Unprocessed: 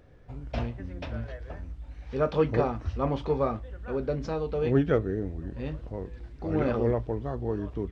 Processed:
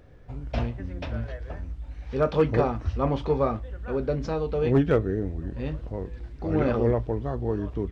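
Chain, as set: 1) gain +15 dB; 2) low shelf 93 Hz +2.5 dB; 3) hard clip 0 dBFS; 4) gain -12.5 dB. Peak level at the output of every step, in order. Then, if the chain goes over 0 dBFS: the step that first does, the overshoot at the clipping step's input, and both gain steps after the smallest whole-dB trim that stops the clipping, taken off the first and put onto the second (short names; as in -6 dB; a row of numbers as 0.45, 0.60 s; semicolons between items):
+4.0, +4.0, 0.0, -12.5 dBFS; step 1, 4.0 dB; step 1 +11 dB, step 4 -8.5 dB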